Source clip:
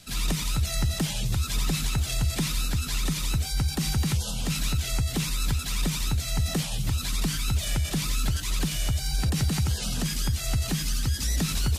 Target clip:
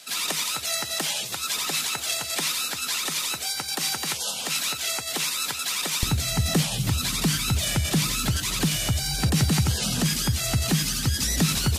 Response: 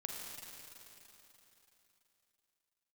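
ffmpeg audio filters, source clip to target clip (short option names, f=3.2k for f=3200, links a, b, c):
-af "asetnsamples=n=441:p=0,asendcmd='6.03 highpass f 100',highpass=530,volume=6dB"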